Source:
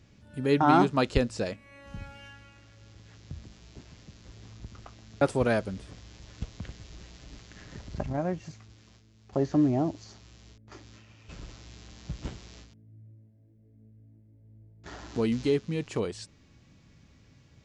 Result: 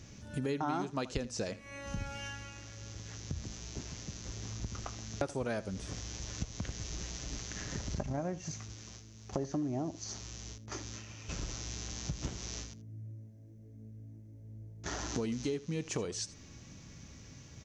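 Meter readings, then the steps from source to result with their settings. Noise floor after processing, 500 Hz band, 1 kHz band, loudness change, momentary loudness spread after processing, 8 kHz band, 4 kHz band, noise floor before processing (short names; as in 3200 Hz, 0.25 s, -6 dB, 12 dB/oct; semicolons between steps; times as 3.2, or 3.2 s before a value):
-53 dBFS, -9.5 dB, -11.0 dB, -11.5 dB, 16 LU, +10.0 dB, 0.0 dB, -59 dBFS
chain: bell 6100 Hz +12.5 dB 0.38 oct; compressor 6:1, threshold -39 dBFS, peak gain reduction 20.5 dB; on a send: echo 81 ms -17.5 dB; on the sum: gain +5.5 dB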